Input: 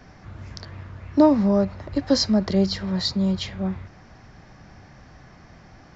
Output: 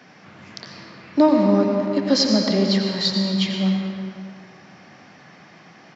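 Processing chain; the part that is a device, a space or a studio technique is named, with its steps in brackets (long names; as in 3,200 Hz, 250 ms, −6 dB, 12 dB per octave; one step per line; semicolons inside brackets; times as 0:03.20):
PA in a hall (high-pass filter 160 Hz 24 dB per octave; parametric band 2,800 Hz +7 dB 1.3 octaves; single-tap delay 87 ms −12 dB; convolution reverb RT60 2.1 s, pre-delay 96 ms, DRR 2.5 dB)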